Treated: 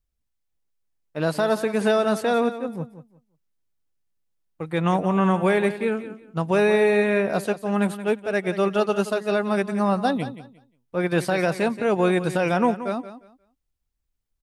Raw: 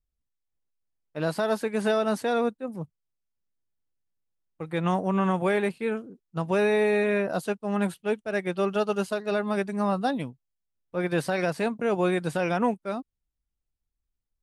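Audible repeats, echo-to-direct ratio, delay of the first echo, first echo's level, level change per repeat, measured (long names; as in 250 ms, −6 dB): 2, −13.0 dB, 177 ms, −13.0 dB, −13.0 dB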